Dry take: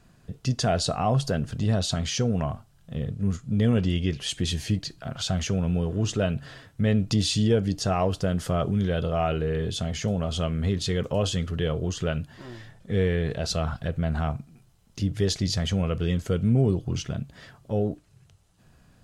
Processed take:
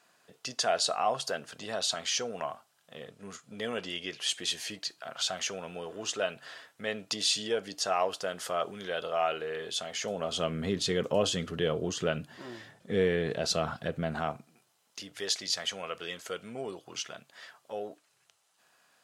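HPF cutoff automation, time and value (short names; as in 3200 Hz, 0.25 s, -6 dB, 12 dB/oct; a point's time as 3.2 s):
9.9 s 640 Hz
10.56 s 230 Hz
14.01 s 230 Hz
15.03 s 770 Hz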